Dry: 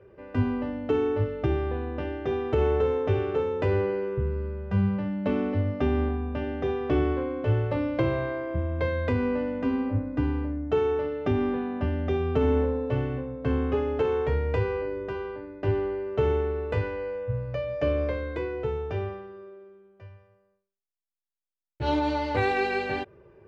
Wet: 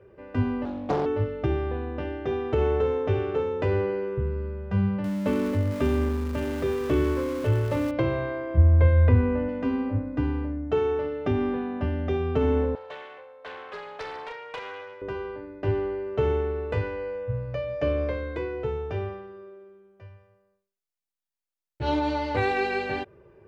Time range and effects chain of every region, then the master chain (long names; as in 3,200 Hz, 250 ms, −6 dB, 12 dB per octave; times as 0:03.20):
0:00.65–0:01.06: parametric band 1,700 Hz −15 dB 0.39 octaves + highs frequency-modulated by the lows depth 0.75 ms
0:05.04–0:07.91: converter with a step at zero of −34.5 dBFS + Butterworth band-reject 750 Hz, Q 7.7
0:08.57–0:09.49: low-pass filter 2,500 Hz + parametric band 75 Hz +14.5 dB 1.2 octaves
0:12.75–0:15.02: Bessel high-pass filter 840 Hz, order 6 + highs frequency-modulated by the lows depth 0.37 ms
whole clip: no processing